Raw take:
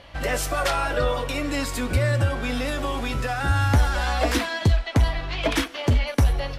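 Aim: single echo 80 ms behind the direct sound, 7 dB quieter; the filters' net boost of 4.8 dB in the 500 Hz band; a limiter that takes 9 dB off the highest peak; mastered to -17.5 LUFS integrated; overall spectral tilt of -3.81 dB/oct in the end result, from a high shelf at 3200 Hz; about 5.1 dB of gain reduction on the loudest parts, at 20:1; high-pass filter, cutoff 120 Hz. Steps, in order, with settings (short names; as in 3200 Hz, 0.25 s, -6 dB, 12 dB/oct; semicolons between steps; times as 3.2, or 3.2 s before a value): HPF 120 Hz; bell 500 Hz +5.5 dB; high shelf 3200 Hz +5 dB; compressor 20:1, threshold -21 dBFS; limiter -18.5 dBFS; echo 80 ms -7 dB; gain +9.5 dB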